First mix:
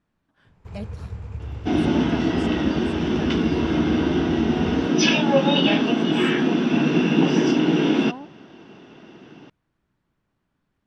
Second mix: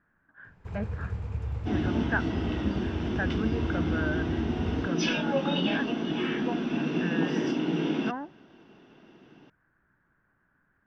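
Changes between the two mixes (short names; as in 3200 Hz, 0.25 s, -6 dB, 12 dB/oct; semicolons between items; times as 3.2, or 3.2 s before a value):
speech: add synth low-pass 1600 Hz, resonance Q 7.2; second sound -9.5 dB; master: add high shelf 7500 Hz -5.5 dB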